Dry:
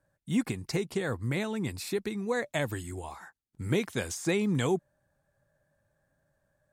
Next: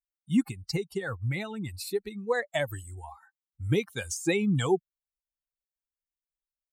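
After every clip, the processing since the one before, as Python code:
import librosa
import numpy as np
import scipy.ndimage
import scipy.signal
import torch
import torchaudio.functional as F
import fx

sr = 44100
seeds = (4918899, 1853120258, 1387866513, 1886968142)

y = fx.bin_expand(x, sr, power=2.0)
y = y * librosa.db_to_amplitude(5.5)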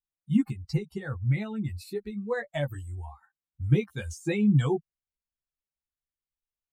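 y = fx.bass_treble(x, sr, bass_db=10, treble_db=-7)
y = fx.doubler(y, sr, ms=14.0, db=-3.0)
y = y * librosa.db_to_amplitude(-5.5)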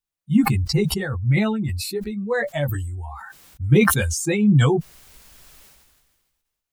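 y = fx.sustainer(x, sr, db_per_s=35.0)
y = y * librosa.db_to_amplitude(5.5)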